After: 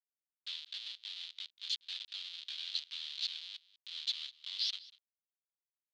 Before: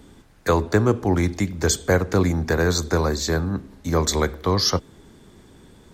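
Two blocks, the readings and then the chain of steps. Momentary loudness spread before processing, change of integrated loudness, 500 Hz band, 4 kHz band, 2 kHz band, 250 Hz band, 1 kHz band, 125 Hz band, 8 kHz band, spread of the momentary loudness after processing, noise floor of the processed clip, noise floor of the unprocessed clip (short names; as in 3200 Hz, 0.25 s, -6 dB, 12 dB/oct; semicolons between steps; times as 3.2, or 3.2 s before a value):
5 LU, -18.0 dB, under -40 dB, -7.0 dB, -24.0 dB, under -40 dB, under -40 dB, under -40 dB, -27.5 dB, 10 LU, under -85 dBFS, -51 dBFS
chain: Schmitt trigger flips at -24 dBFS; Butterworth band-pass 3700 Hz, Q 2.9; on a send: echo 0.194 s -20.5 dB; on the sum: gain -1.5 dB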